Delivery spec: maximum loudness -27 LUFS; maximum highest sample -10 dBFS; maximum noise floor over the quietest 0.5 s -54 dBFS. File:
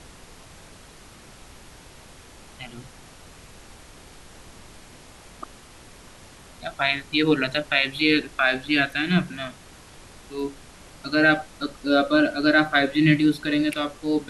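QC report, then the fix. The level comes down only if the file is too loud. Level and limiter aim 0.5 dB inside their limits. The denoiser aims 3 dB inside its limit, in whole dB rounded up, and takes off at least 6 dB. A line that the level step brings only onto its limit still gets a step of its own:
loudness -22.0 LUFS: fail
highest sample -5.0 dBFS: fail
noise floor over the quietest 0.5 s -47 dBFS: fail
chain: noise reduction 6 dB, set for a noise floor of -47 dBFS; trim -5.5 dB

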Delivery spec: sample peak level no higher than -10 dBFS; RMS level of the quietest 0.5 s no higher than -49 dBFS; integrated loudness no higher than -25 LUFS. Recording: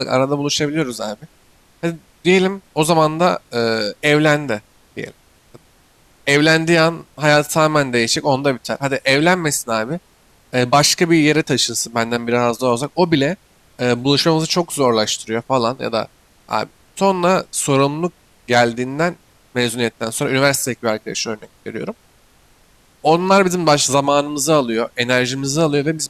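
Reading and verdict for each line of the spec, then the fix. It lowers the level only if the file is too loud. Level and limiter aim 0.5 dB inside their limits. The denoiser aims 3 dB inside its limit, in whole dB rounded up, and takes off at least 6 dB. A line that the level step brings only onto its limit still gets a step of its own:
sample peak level -3.5 dBFS: fail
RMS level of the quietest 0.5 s -53 dBFS: pass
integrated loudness -17.0 LUFS: fail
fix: trim -8.5 dB

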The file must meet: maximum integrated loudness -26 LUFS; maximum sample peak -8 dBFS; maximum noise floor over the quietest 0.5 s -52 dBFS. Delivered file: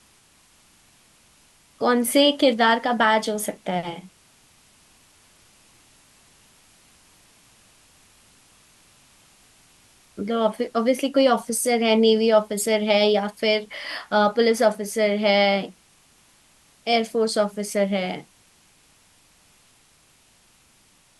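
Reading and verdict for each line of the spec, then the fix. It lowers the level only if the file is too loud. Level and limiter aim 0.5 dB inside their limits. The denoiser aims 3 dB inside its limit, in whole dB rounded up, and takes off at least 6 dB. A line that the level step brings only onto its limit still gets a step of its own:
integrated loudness -21.0 LUFS: fail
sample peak -6.0 dBFS: fail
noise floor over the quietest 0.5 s -58 dBFS: pass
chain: trim -5.5 dB

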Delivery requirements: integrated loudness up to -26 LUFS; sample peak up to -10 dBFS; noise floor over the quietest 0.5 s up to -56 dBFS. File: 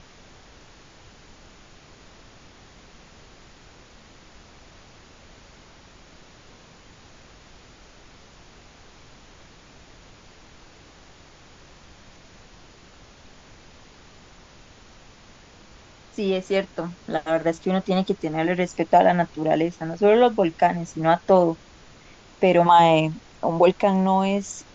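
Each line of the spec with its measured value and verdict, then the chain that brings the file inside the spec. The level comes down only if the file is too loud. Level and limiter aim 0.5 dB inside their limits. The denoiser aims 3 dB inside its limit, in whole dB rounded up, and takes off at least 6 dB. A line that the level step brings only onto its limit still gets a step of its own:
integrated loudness -21.0 LUFS: fail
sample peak -5.0 dBFS: fail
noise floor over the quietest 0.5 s -49 dBFS: fail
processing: noise reduction 6 dB, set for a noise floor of -49 dBFS; trim -5.5 dB

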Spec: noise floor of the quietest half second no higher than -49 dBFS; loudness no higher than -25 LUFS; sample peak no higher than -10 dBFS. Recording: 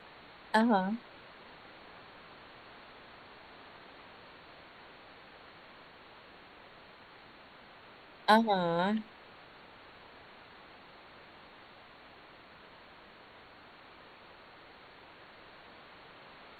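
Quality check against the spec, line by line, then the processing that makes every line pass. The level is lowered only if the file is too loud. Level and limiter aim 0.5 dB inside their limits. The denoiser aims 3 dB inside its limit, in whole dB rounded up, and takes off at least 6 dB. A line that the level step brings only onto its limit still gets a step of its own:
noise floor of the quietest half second -55 dBFS: pass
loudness -29.5 LUFS: pass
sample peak -12.0 dBFS: pass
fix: none needed

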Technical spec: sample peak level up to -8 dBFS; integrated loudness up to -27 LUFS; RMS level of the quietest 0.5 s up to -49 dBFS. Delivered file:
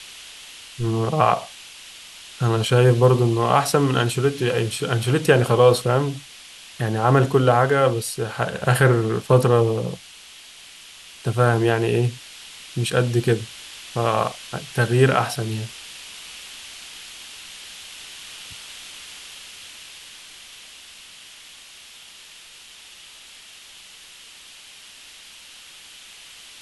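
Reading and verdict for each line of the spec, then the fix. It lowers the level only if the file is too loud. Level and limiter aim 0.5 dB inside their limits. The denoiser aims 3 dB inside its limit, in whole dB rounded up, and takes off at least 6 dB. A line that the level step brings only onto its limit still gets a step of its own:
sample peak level -3.0 dBFS: fail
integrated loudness -20.0 LUFS: fail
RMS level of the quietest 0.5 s -45 dBFS: fail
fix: trim -7.5 dB

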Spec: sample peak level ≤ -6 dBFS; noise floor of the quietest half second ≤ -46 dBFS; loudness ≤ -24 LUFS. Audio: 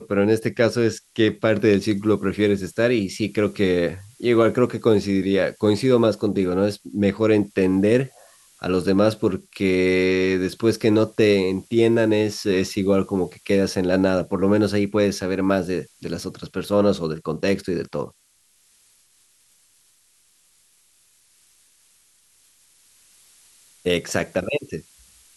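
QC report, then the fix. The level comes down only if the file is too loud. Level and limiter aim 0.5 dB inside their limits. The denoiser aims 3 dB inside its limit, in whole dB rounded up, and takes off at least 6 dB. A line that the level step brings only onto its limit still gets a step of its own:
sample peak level -4.5 dBFS: fail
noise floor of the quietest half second -61 dBFS: pass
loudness -21.0 LUFS: fail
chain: trim -3.5 dB

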